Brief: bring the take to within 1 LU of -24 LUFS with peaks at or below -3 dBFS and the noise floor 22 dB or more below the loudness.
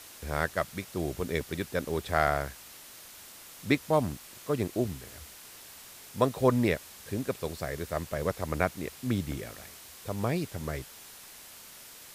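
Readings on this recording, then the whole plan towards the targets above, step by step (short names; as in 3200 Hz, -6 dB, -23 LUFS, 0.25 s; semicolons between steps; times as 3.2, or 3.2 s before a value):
noise floor -49 dBFS; noise floor target -54 dBFS; loudness -31.5 LUFS; peak -9.5 dBFS; loudness target -24.0 LUFS
-> denoiser 6 dB, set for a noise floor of -49 dBFS; gain +7.5 dB; limiter -3 dBFS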